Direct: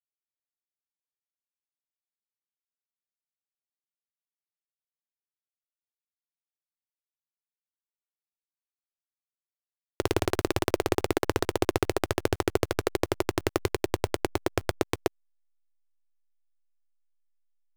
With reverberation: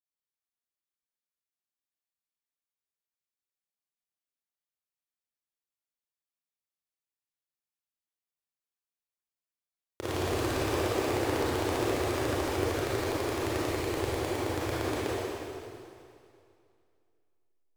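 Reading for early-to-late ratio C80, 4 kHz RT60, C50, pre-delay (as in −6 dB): −3.0 dB, 2.3 s, −6.5 dB, 22 ms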